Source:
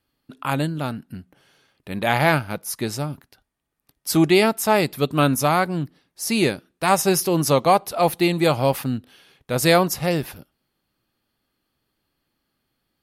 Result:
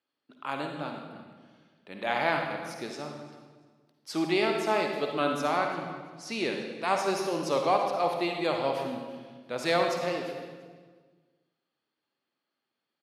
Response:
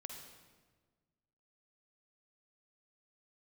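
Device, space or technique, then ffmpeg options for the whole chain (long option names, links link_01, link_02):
supermarket ceiling speaker: -filter_complex "[0:a]highpass=310,lowpass=5000[link_01];[1:a]atrim=start_sample=2205[link_02];[link_01][link_02]afir=irnorm=-1:irlink=0,asettb=1/sr,asplit=3[link_03][link_04][link_05];[link_03]atrim=end=5.574[link_06];[link_04]atrim=start=5.57:end=6.45,asetpts=PTS-STARTPTS,afade=type=in:duration=0.004:curve=qsin,afade=type=out:start_time=0.876:duration=0.004:curve=qsin,lowpass=11000[link_07];[link_05]atrim=start=6.446[link_08];[link_06][link_07]acrossfade=duration=0.004:curve1=hsin:curve2=qsin[link_09];[link_09][link_08]acrossfade=duration=0.004:curve1=qsin:curve2=hsin,aecho=1:1:342|684:0.1|0.023,volume=-3.5dB"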